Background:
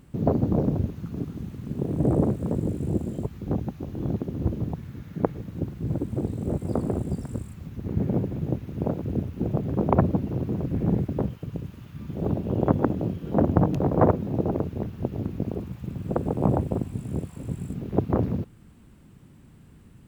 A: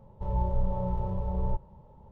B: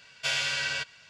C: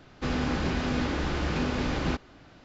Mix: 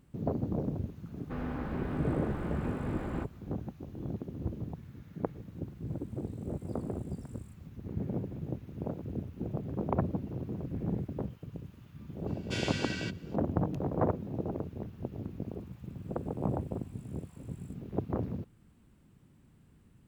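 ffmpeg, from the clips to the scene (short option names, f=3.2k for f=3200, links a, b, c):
-filter_complex "[0:a]volume=-10dB[a];[3:a]lowpass=1.5k,atrim=end=2.64,asetpts=PTS-STARTPTS,volume=-8dB,afade=t=in:d=0.004:c=hsin,afade=t=out:st=2.636:d=0.004:c=hsin,adelay=1080[b];[2:a]atrim=end=1.09,asetpts=PTS-STARTPTS,volume=-10dB,afade=t=in:d=0.004:c=hsin,afade=t=out:st=1.086:d=0.004:c=hsin,adelay=12270[c];[a][b][c]amix=inputs=3:normalize=0"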